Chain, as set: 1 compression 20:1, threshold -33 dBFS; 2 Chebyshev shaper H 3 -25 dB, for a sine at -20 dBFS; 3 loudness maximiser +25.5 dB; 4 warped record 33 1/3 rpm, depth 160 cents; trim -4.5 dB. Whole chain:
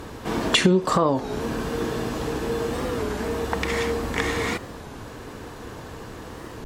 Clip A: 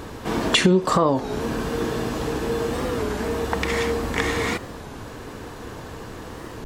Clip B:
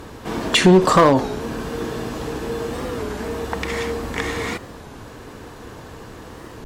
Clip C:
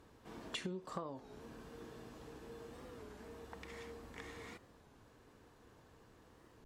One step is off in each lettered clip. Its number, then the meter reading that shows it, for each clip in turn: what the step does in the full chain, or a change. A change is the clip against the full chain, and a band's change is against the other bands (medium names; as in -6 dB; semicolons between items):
2, loudness change +1.5 LU; 1, crest factor change -4.0 dB; 3, crest factor change +6.0 dB